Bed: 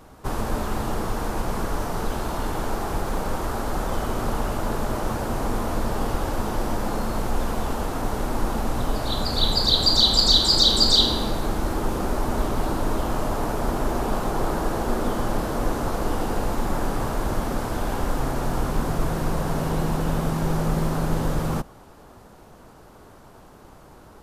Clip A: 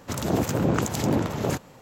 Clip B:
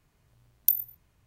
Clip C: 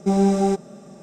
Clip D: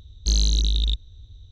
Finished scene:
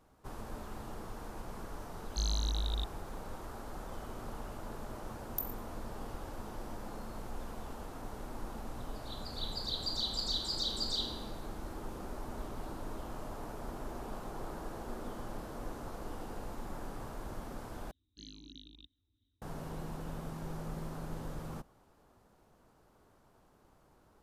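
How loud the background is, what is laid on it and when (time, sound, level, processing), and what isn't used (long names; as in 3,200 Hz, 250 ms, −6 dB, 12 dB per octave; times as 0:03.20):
bed −18 dB
0:01.90: mix in D −13 dB
0:04.70: mix in B −15 dB
0:17.91: overwrite with D −7.5 dB + formant filter swept between two vowels i-u 3 Hz
not used: A, C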